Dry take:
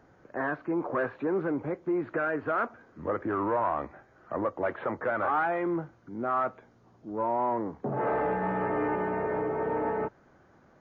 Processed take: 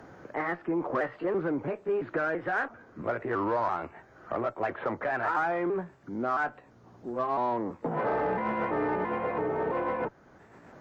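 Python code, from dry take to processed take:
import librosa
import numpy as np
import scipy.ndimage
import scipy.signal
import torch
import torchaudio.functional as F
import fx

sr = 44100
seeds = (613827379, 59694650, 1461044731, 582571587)

y = fx.pitch_trill(x, sr, semitones=2.5, every_ms=335)
y = fx.cheby_harmonics(y, sr, harmonics=(8,), levels_db=(-37,), full_scale_db=-18.0)
y = fx.band_squash(y, sr, depth_pct=40)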